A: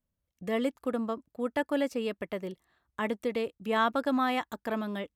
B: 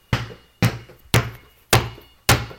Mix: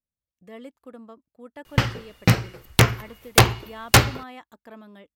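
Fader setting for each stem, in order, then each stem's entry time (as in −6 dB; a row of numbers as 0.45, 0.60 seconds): −12.0, +1.5 decibels; 0.00, 1.65 seconds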